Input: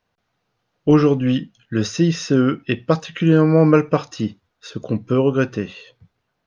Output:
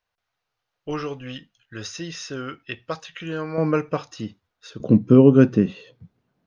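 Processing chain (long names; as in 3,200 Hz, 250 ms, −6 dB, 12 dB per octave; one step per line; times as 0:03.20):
parametric band 210 Hz −14.5 dB 2.4 octaves, from 0:03.58 −3.5 dB, from 0:04.80 +14 dB
level −5.5 dB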